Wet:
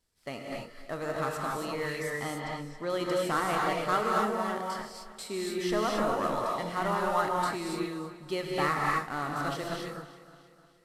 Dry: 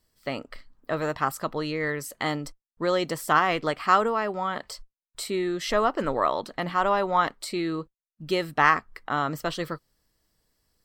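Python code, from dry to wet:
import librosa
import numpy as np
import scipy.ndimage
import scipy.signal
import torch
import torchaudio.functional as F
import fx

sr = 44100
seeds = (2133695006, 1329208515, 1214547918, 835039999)

p1 = fx.cvsd(x, sr, bps=64000)
p2 = fx.air_absorb(p1, sr, metres=95.0, at=(2.1, 2.9))
p3 = p2 + fx.echo_feedback(p2, sr, ms=306, feedback_pct=50, wet_db=-16, dry=0)
p4 = fx.rev_gated(p3, sr, seeds[0], gate_ms=300, shape='rising', drr_db=-2.0)
y = p4 * 10.0 ** (-8.0 / 20.0)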